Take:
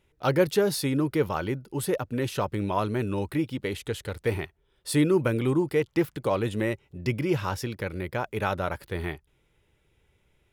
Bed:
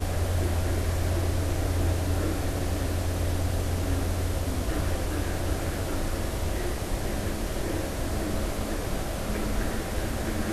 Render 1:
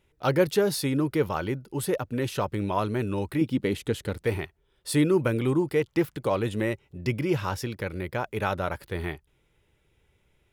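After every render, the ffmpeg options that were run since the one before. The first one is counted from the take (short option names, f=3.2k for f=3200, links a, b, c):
-filter_complex "[0:a]asettb=1/sr,asplit=3[a][b][c];[a]atrim=end=3.414[d];[b]atrim=start=3.41:end=4.24,asetpts=PTS-STARTPTS,afade=t=in:d=0.004:c=qsin,afade=t=out:st=0.826:d=0.004:c=qsin,equalizer=f=230:w=0.88:g=8[e];[c]atrim=start=4.236[f];[d][e]acrossfade=d=0.004:c1=hsin:c2=qsin[g];[g][f]acrossfade=d=0.004:c1=qsin:c2=hsin"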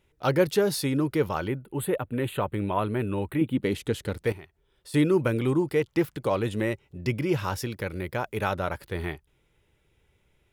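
-filter_complex "[0:a]asettb=1/sr,asplit=3[a][b][c];[a]atrim=end=1.484[d];[b]atrim=start=1.48:end=3.63,asetpts=PTS-STARTPTS,afade=t=in:d=0.004:c=qsin,afade=t=out:st=2.146:d=0.004:c=qsin,asuperstop=centerf=5500:order=4:qfactor=1.2[e];[c]atrim=start=3.626[f];[d][e]acrossfade=d=0.004:c1=hsin:c2=qsin[g];[g][f]acrossfade=d=0.004:c1=qsin:c2=hsin,asettb=1/sr,asplit=3[h][i][j];[h]atrim=end=4.324[k];[i]atrim=start=4.32:end=4.94,asetpts=PTS-STARTPTS,afade=t=in:d=0.004:c=qsin,afade=t=out:st=0.616:d=0.004:c=qsin,acompressor=threshold=-51dB:ratio=2:attack=3.2:release=140:knee=1:detection=peak[l];[j]atrim=start=4.936[m];[k][l]acrossfade=d=0.004:c1=hsin:c2=qsin[n];[n][m]acrossfade=d=0.004:c1=qsin:c2=hsin,asettb=1/sr,asplit=3[o][p][q];[o]atrim=end=7.384[r];[p]atrim=start=7.38:end=8.5,asetpts=PTS-STARTPTS,afade=t=in:d=0.004:c=qsin,afade=t=out:st=1.116:d=0.004:c=qsin,highshelf=f=9.2k:g=5[s];[q]atrim=start=8.496[t];[r][s]acrossfade=d=0.004:c1=hsin:c2=qsin[u];[u][t]acrossfade=d=0.004:c1=qsin:c2=hsin"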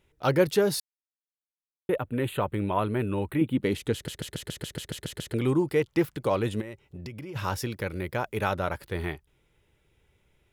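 -filter_complex "[0:a]asplit=3[a][b][c];[a]afade=t=out:st=6.6:d=0.02[d];[b]acompressor=threshold=-35dB:ratio=16:attack=3.2:release=140:knee=1:detection=peak,afade=t=in:st=6.6:d=0.02,afade=t=out:st=7.35:d=0.02[e];[c]afade=t=in:st=7.35:d=0.02[f];[d][e][f]amix=inputs=3:normalize=0,asplit=13[g][h][i][j][k][l][m][n][o][p][q][r][s];[g]atrim=end=0.8,asetpts=PTS-STARTPTS,afade=t=out:st=0.796:d=0.004:c=hsin[t];[h]atrim=start=0.8:end=1.89,asetpts=PTS-STARTPTS,volume=0[u];[i]atrim=start=1.89:end=4.082,asetpts=PTS-STARTPTS,afade=t=in:d=0.004:c=hsin[v];[j]atrim=start=3.938:end=4.082[w];[k]atrim=start=3.938:end=4.082[x];[l]atrim=start=3.938:end=4.082[y];[m]atrim=start=3.938:end=4.082[z];[n]atrim=start=3.938:end=4.082[aa];[o]atrim=start=3.938:end=4.082[ab];[p]atrim=start=3.938:end=4.082[ac];[q]atrim=start=3.938:end=4.082[ad];[r]atrim=start=3.938:end=4.082[ae];[s]atrim=start=5.338[af];[t][u][v]concat=n=3:v=0:a=1[ag];[ag][w]acrossfade=d=0.004:c1=hsin:c2=hsin[ah];[ah][x]acrossfade=d=0.004:c1=hsin:c2=hsin[ai];[ai][y]acrossfade=d=0.004:c1=hsin:c2=hsin[aj];[aj][z]acrossfade=d=0.004:c1=hsin:c2=hsin[ak];[ak][aa]acrossfade=d=0.004:c1=hsin:c2=hsin[al];[al][ab]acrossfade=d=0.004:c1=hsin:c2=hsin[am];[am][ac]acrossfade=d=0.004:c1=hsin:c2=hsin[an];[an][ad]acrossfade=d=0.004:c1=hsin:c2=hsin[ao];[ao][ae]acrossfade=d=0.004:c1=hsin:c2=hsin[ap];[ap][af]acrossfade=d=0.004:c1=hsin:c2=hsin"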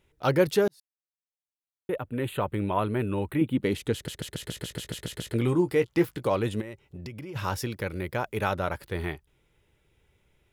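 -filter_complex "[0:a]asettb=1/sr,asplit=3[a][b][c];[a]atrim=end=4.384[d];[b]atrim=start=4.38:end=6.27,asetpts=PTS-STARTPTS,afade=t=in:d=0.004:c=qsin,afade=t=out:st=1.886:d=0.004:c=qsin,asplit=2[e][f];[f]adelay=17,volume=-9dB[g];[e][g]amix=inputs=2:normalize=0,atrim=end_sample=83349[h];[c]atrim=start=6.266[i];[d][h]acrossfade=d=0.004:c1=hsin:c2=qsin[j];[j][i]acrossfade=d=0.004:c1=qsin:c2=hsin,asplit=2[k][l];[k]atrim=end=0.68,asetpts=PTS-STARTPTS,afade=t=out:st=0.676:d=0.004:c=hsin[m];[l]atrim=start=0.68,asetpts=PTS-STARTPTS,afade=t=in:d=1.87[n];[m][n]concat=n=2:v=0:a=1"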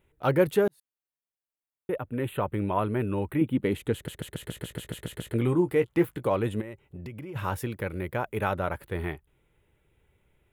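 -af "equalizer=f=5.2k:t=o:w=0.86:g=-14.5"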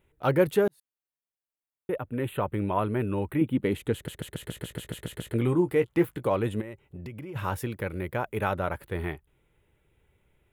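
-af anull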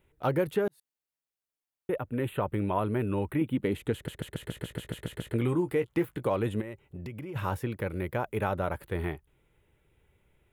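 -filter_complex "[0:a]acrossover=split=1200|3100[a][b][c];[a]acompressor=threshold=-24dB:ratio=4[d];[b]acompressor=threshold=-41dB:ratio=4[e];[c]acompressor=threshold=-50dB:ratio=4[f];[d][e][f]amix=inputs=3:normalize=0"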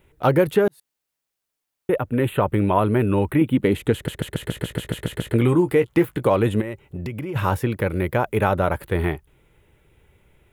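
-af "volume=10dB"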